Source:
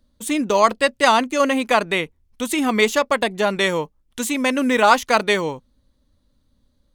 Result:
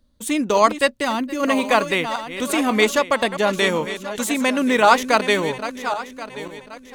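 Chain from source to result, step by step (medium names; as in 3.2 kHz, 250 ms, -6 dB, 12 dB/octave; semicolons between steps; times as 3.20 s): backward echo that repeats 540 ms, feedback 54%, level -11 dB; 1.03–1.43 s: time-frequency box 390–11000 Hz -9 dB; 1.45–2.58 s: modulation noise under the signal 34 dB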